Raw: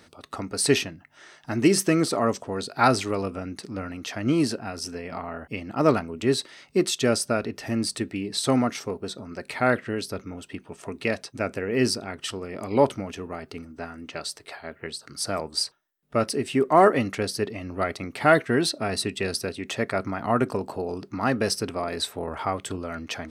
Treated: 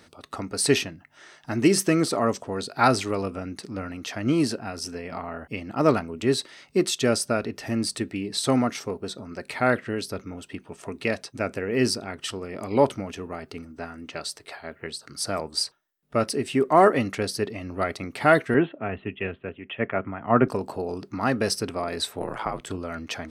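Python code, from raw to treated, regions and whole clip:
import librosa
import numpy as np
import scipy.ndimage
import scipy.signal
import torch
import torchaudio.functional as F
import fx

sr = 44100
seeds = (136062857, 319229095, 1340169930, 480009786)

y = fx.chain(x, sr, fx.steep_lowpass(hz=3200.0, slope=96),
    fx.band_widen(depth_pct=100), at=(18.54, 20.48))
y = fx.chain(y, sr, fx.ring_mod(carrier_hz=55.0),
    fx.band_squash(depth_pct=70), at=(22.21, 22.67))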